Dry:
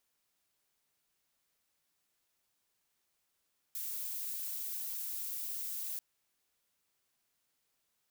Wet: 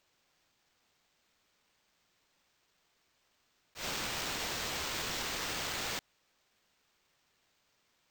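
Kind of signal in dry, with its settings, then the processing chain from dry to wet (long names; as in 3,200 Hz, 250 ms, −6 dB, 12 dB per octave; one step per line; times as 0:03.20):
noise violet, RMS −39.5 dBFS 2.24 s
in parallel at −3 dB: brickwall limiter −37.5 dBFS
on the sum: bad sample-rate conversion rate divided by 4×, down none, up hold
volume swells 102 ms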